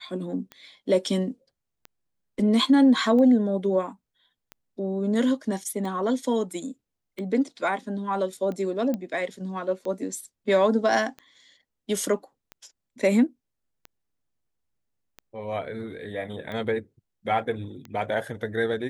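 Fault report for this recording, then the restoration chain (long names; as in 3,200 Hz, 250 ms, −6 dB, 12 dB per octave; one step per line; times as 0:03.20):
scratch tick 45 rpm −24 dBFS
0:08.94: click −17 dBFS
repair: click removal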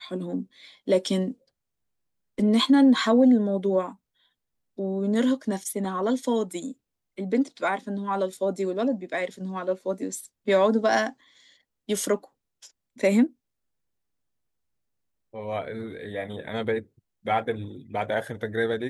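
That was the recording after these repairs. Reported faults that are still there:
none of them is left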